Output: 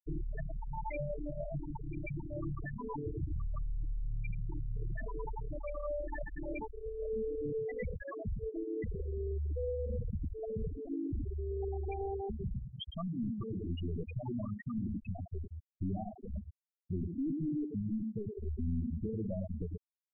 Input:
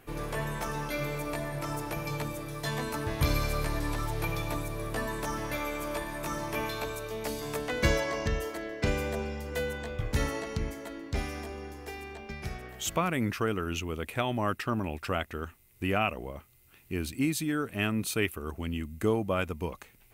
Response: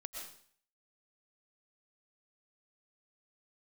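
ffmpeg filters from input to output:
-filter_complex "[0:a]equalizer=f=200:t=o:w=0.33:g=4,equalizer=f=500:t=o:w=0.33:g=-5,equalizer=f=10k:t=o:w=0.33:g=6,acompressor=threshold=-38dB:ratio=16,aecho=1:1:107:0.562,asplit=2[a][b];[1:a]atrim=start_sample=2205,asetrate=32193,aresample=44100[c];[b][c]afir=irnorm=-1:irlink=0,volume=-9.5dB[d];[a][d]amix=inputs=2:normalize=0,acrossover=split=3900[e][f];[f]acompressor=threshold=-51dB:ratio=4:attack=1:release=60[g];[e][g]amix=inputs=2:normalize=0,aeval=exprs='(tanh(141*val(0)+0.25)-tanh(0.25))/141':c=same,bandreject=f=1.4k:w=5.5,afftfilt=real='re*gte(hypot(re,im),0.0251)':imag='im*gte(hypot(re,im),0.0251)':win_size=1024:overlap=0.75,volume=12.5dB"

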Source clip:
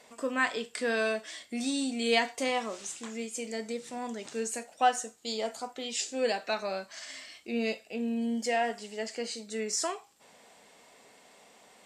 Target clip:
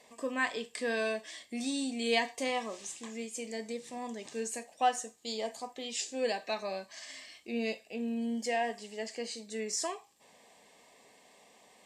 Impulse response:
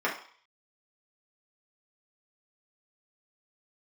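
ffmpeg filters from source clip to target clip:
-af "asuperstop=centerf=1400:order=8:qfactor=5.4,volume=-3dB"

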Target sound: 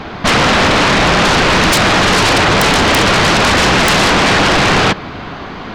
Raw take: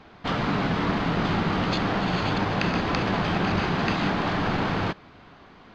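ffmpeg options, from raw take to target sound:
-af "aeval=exprs='0.316*sin(PI/2*7.08*val(0)/0.316)':c=same,volume=2.5dB"

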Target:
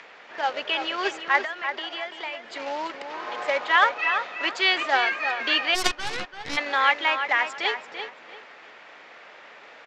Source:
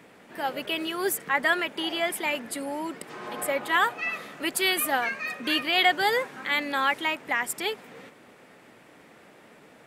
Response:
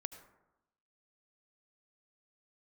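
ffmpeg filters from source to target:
-filter_complex "[0:a]acrossover=split=960[a][b];[a]acrusher=bits=2:mode=log:mix=0:aa=0.000001[c];[b]acompressor=mode=upward:threshold=-46dB:ratio=2.5[d];[c][d]amix=inputs=2:normalize=0,acrossover=split=460 5400:gain=0.0891 1 0.1[e][f][g];[e][f][g]amix=inputs=3:normalize=0,asettb=1/sr,asplit=3[h][i][j];[h]atrim=end=1.434[k];[i]atrim=start=1.43:end=2.6,asetpts=PTS-STARTPTS,afade=t=in:d=0.004:c=qsin,afade=t=out:st=1.166:d=0.004:c=qsin,acompressor=threshold=-36dB:ratio=6[l];[j]atrim=start=2.596[m];[k][l]acrossfade=d=0.004:c1=hsin:c2=qsin[n];[n][m]acrossfade=d=0.004:c1=qsin:c2=hsin,lowshelf=f=110:g=5,asplit=2[o][p];[p]adelay=338,lowpass=f=4.2k:p=1,volume=-7.5dB,asplit=2[q][r];[r]adelay=338,lowpass=f=4.2k:p=1,volume=0.27,asplit=2[s][t];[t]adelay=338,lowpass=f=4.2k:p=1,volume=0.27[u];[q][s][u]amix=inputs=3:normalize=0[v];[o][v]amix=inputs=2:normalize=0,aresample=16000,aresample=44100,asplit=3[w][x][y];[w]afade=t=out:st=5.74:d=0.02[z];[x]aeval=exprs='0.398*(cos(1*acos(clip(val(0)/0.398,-1,1)))-cos(1*PI/2))+0.178*(cos(3*acos(clip(val(0)/0.398,-1,1)))-cos(3*PI/2))+0.00708*(cos(5*acos(clip(val(0)/0.398,-1,1)))-cos(5*PI/2))+0.0316*(cos(6*acos(clip(val(0)/0.398,-1,1)))-cos(6*PI/2))':c=same,afade=t=in:st=5.74:d=0.02,afade=t=out:st=6.56:d=0.02[aa];[y]afade=t=in:st=6.56:d=0.02[ab];[z][aa][ab]amix=inputs=3:normalize=0,volume=4.5dB"

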